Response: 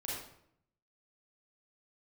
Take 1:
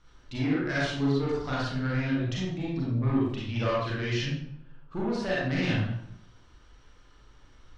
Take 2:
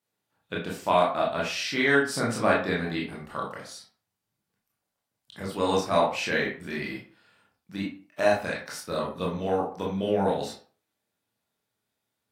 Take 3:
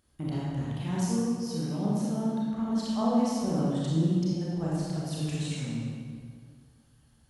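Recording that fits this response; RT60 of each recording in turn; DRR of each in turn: 1; 0.70, 0.45, 2.1 s; -6.5, -4.0, -7.0 dB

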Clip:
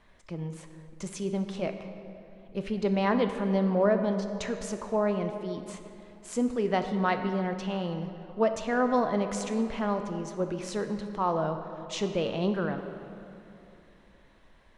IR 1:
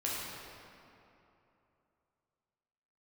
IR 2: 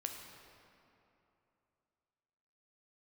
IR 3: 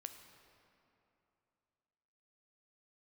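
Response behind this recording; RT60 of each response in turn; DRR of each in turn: 3; 3.0, 3.0, 2.9 s; -6.5, 2.5, 6.5 dB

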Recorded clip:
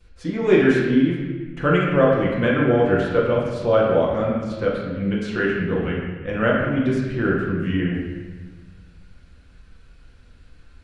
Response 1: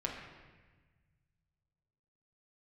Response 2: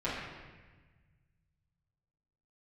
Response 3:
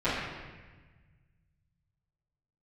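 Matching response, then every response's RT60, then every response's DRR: 3; 1.3, 1.3, 1.3 s; -2.0, -11.5, -17.0 dB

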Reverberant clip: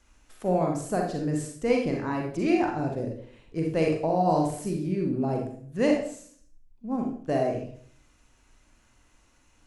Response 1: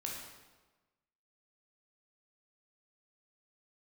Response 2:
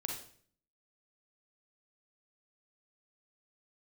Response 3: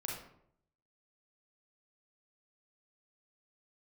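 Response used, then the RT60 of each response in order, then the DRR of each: 2; 1.2, 0.55, 0.70 s; -2.0, 0.5, -2.5 dB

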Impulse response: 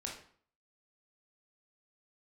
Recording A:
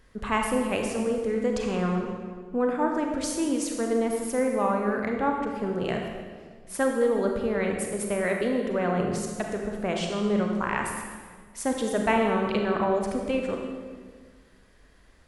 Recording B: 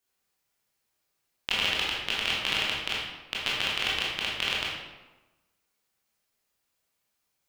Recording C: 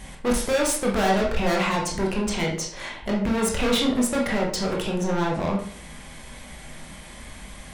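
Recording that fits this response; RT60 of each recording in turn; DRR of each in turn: C; 1.7, 1.1, 0.50 s; 1.5, -6.0, -2.0 dB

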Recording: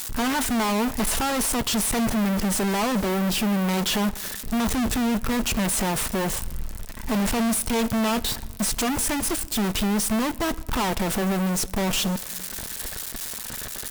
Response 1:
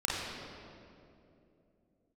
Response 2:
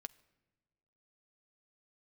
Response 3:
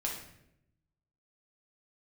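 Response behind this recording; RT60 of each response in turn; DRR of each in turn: 2; 2.8 s, not exponential, 0.80 s; -6.5, 12.0, -2.5 dB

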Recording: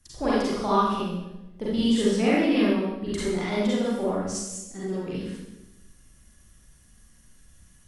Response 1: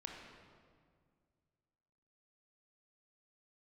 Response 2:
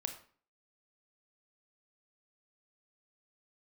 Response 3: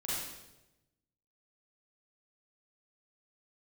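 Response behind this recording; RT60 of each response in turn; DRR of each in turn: 3; 2.0, 0.45, 1.0 s; 0.0, 5.5, -9.0 dB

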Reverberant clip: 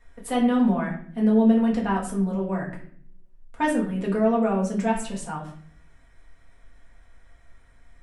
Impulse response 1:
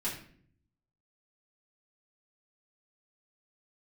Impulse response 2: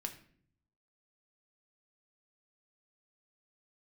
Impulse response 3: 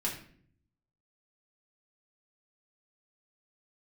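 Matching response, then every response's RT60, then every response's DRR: 3; 0.55, 0.55, 0.55 s; -9.0, 4.0, -5.0 dB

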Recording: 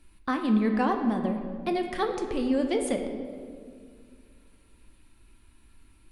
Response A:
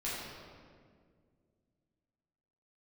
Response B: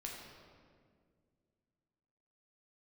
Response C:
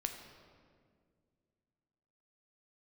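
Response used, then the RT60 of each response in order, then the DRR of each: C; 2.0, 2.0, 2.0 s; -10.0, -2.5, 4.5 dB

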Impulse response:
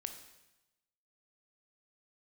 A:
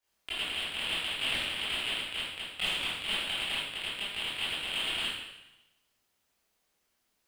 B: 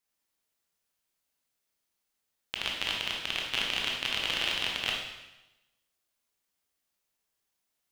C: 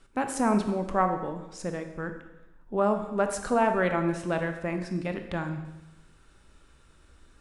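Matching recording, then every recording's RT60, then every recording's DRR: C; 0.95, 0.95, 1.0 s; -11.5, -2.0, 6.0 dB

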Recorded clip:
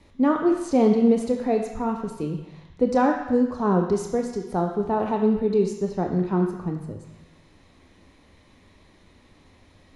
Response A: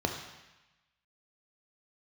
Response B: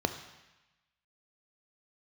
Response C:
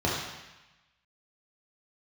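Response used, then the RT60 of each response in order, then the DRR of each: A; 1.0, 1.0, 1.0 s; 3.0, 8.0, -5.5 dB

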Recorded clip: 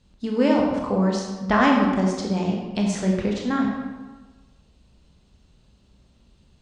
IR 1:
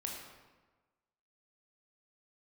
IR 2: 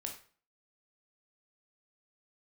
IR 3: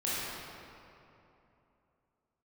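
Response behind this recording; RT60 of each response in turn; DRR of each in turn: 1; 1.3, 0.45, 3.0 s; -1.0, 1.5, -9.5 dB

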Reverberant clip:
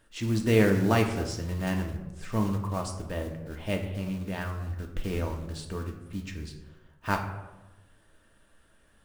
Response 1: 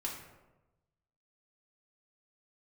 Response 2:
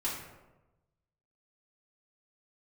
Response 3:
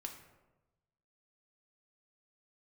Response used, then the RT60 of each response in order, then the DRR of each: 3; 1.1, 1.1, 1.1 s; -3.0, -7.5, 2.5 dB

